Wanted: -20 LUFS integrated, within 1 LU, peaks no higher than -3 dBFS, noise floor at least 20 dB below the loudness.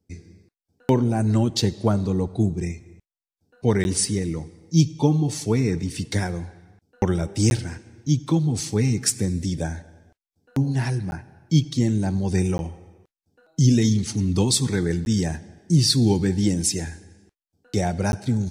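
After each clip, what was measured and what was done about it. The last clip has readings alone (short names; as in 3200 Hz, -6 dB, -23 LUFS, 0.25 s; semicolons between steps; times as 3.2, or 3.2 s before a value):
dropouts 6; longest dropout 11 ms; loudness -22.5 LUFS; peak -6.0 dBFS; loudness target -20.0 LUFS
-> interpolate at 3.84/7.5/11.11/12.58/15.05/18.12, 11 ms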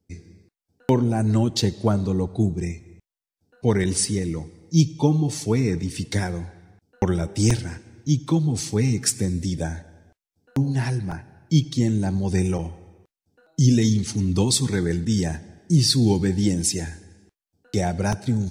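dropouts 0; loudness -22.5 LUFS; peak -6.0 dBFS; loudness target -20.0 LUFS
-> gain +2.5 dB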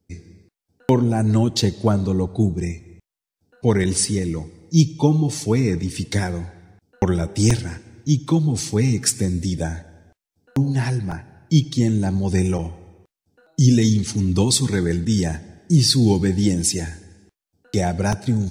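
loudness -20.0 LUFS; peak -3.5 dBFS; noise floor -88 dBFS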